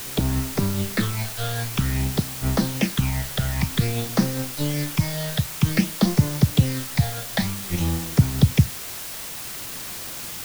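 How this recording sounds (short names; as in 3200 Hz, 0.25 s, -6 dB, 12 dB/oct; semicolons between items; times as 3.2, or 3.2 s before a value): phasing stages 8, 0.52 Hz, lowest notch 300–3200 Hz; a quantiser's noise floor 6-bit, dither triangular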